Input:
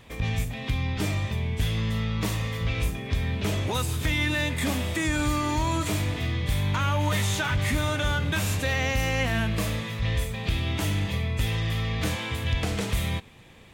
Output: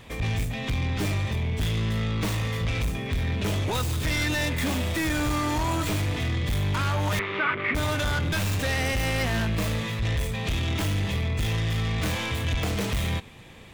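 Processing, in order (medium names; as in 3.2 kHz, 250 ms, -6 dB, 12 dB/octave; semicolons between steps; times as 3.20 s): tracing distortion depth 0.11 ms; saturation -25.5 dBFS, distortion -12 dB; 7.19–7.75 s: cabinet simulation 250–2800 Hz, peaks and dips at 390 Hz +7 dB, 810 Hz -6 dB, 1.2 kHz +9 dB, 2.2 kHz +8 dB; trim +4 dB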